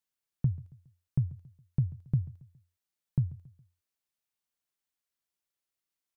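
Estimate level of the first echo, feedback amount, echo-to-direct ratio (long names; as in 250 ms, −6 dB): −20.0 dB, 42%, −19.0 dB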